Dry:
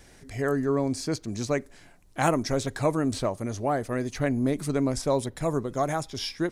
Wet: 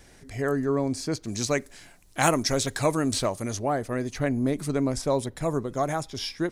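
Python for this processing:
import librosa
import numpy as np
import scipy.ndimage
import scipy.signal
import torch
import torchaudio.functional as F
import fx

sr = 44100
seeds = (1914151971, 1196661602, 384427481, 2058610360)

y = fx.high_shelf(x, sr, hz=2000.0, db=9.0, at=(1.25, 3.59))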